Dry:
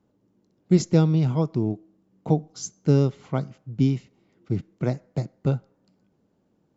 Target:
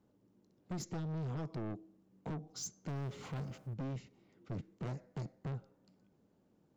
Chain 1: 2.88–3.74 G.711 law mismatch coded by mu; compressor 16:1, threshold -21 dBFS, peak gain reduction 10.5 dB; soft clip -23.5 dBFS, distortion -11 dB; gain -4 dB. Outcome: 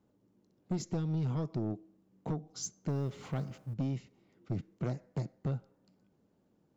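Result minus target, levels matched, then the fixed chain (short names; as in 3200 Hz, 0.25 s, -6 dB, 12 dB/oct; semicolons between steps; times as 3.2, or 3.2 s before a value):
soft clip: distortion -6 dB
2.88–3.74 G.711 law mismatch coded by mu; compressor 16:1, threshold -21 dBFS, peak gain reduction 10.5 dB; soft clip -33 dBFS, distortion -5 dB; gain -4 dB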